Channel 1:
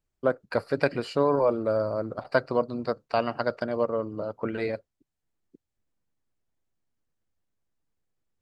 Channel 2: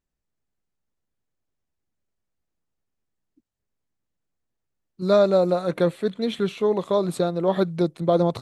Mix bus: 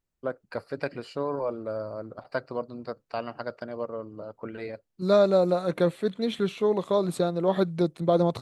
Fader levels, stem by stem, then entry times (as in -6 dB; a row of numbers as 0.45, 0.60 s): -7.0, -2.5 dB; 0.00, 0.00 s